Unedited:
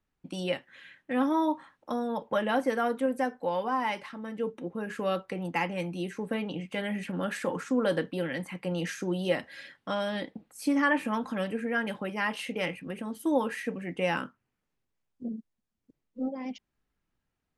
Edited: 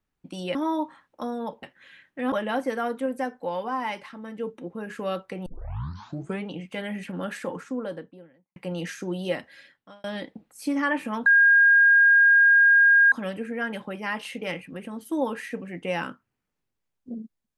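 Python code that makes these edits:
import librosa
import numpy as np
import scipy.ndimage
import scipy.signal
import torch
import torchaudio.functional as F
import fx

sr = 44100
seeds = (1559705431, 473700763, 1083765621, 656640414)

y = fx.studio_fade_out(x, sr, start_s=7.21, length_s=1.35)
y = fx.edit(y, sr, fx.move(start_s=0.55, length_s=0.69, to_s=2.32),
    fx.tape_start(start_s=5.46, length_s=1.01),
    fx.fade_out_span(start_s=9.29, length_s=0.75),
    fx.insert_tone(at_s=11.26, length_s=1.86, hz=1620.0, db=-13.0), tone=tone)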